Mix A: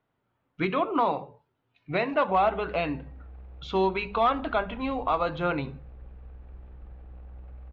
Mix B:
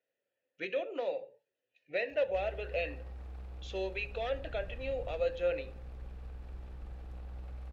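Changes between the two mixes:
speech: add formant filter e
master: remove high-frequency loss of the air 420 metres

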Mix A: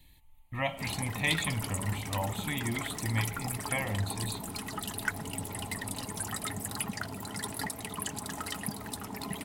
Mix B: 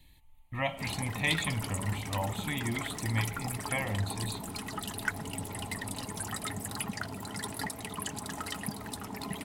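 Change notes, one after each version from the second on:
master: add high-shelf EQ 11,000 Hz −5.5 dB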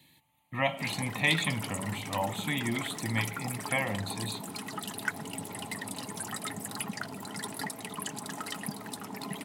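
speech +3.5 dB
master: add high-pass filter 130 Hz 24 dB per octave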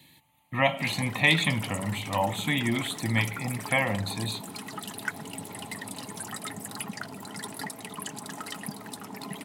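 speech +5.0 dB

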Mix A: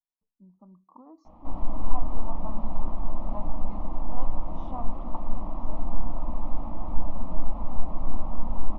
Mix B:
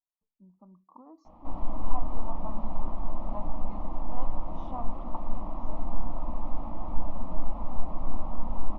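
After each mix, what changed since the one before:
master: add low-shelf EQ 330 Hz −3 dB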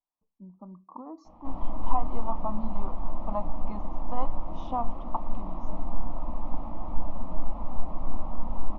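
speech +9.0 dB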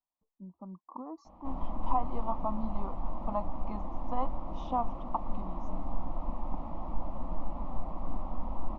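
reverb: off

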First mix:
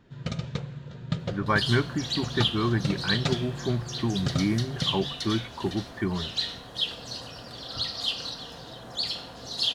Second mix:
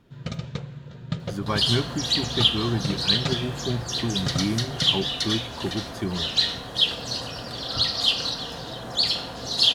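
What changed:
speech: remove low-pass with resonance 1,800 Hz, resonance Q 2.6
second sound +7.5 dB

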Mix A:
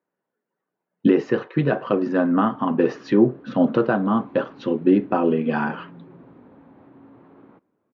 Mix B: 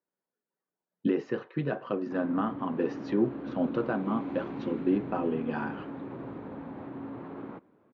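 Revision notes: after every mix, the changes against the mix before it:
speech −10.5 dB
background +8.5 dB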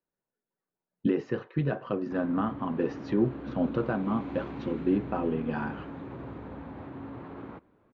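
background: add spectral tilt +1.5 dB per octave
master: remove high-pass filter 180 Hz 12 dB per octave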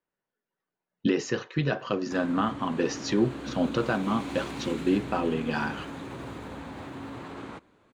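master: remove head-to-tape spacing loss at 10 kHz 43 dB

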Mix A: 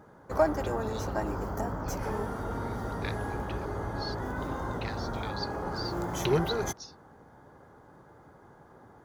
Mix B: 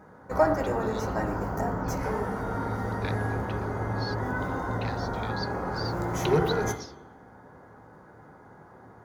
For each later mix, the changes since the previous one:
reverb: on, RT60 0.85 s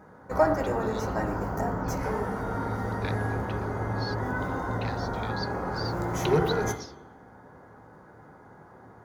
nothing changed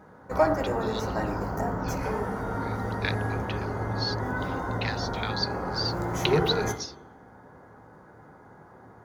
speech +9.0 dB

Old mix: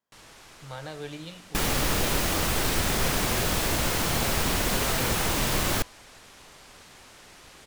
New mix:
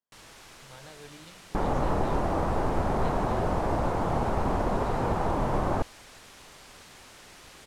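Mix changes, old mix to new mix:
speech −10.5 dB
second sound: add low-pass with resonance 880 Hz, resonance Q 1.7

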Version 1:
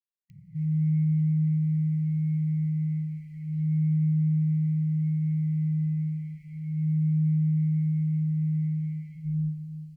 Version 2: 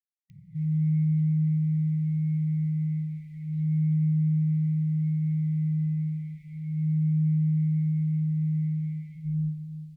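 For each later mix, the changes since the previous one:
master: remove Butterworth band-reject 3,600 Hz, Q 6.2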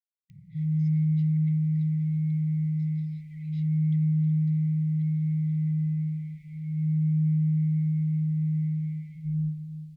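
speech: remove resonant band-pass 1,100 Hz, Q 2.3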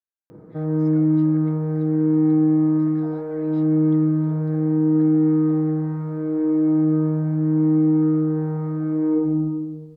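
master: remove linear-phase brick-wall band-stop 190–1,900 Hz

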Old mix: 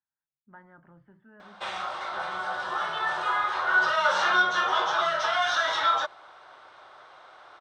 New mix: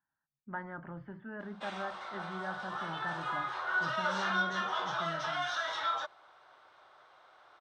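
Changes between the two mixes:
speech +10.5 dB
background −9.5 dB

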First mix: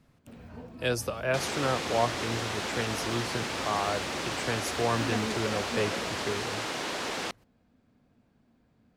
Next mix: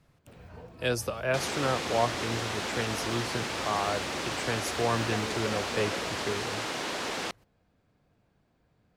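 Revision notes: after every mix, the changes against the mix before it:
first sound: add parametric band 240 Hz −13 dB 0.38 octaves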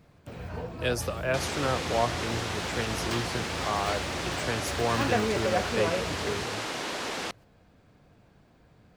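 first sound +10.5 dB

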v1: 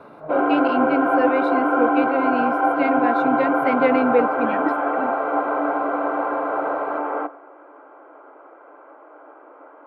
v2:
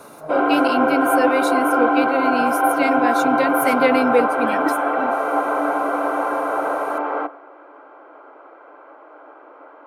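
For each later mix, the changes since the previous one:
master: remove high-frequency loss of the air 420 metres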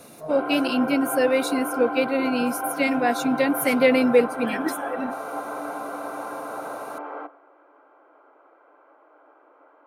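background −11.5 dB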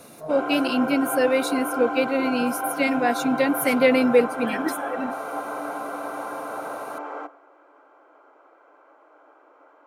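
background: remove high-frequency loss of the air 230 metres

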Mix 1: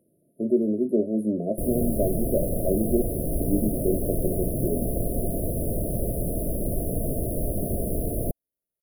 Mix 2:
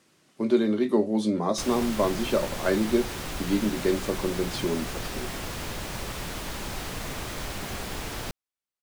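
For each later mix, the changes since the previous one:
background −9.5 dB
master: remove linear-phase brick-wall band-stop 710–9,500 Hz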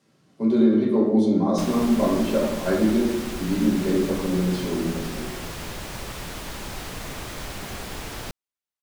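speech −8.0 dB
reverb: on, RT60 1.1 s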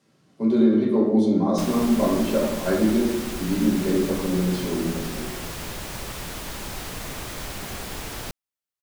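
background: add high-shelf EQ 7,800 Hz +5 dB

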